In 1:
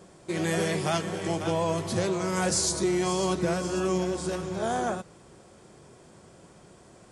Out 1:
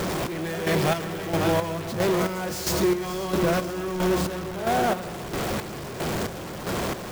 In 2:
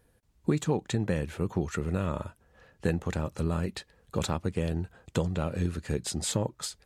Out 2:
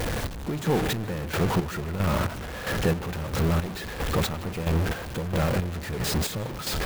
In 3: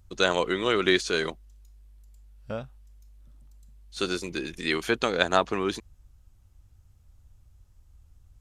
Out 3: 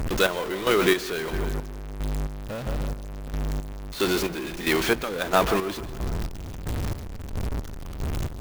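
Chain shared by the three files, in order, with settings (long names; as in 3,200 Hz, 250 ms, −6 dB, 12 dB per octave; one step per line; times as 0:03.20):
converter with a step at zero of −21 dBFS
high-shelf EQ 7,300 Hz −8.5 dB
tape delay 150 ms, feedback 62%, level −10 dB, low-pass 2,300 Hz
square-wave tremolo 1.5 Hz, depth 60%, duty 40%
converter with an unsteady clock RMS 0.021 ms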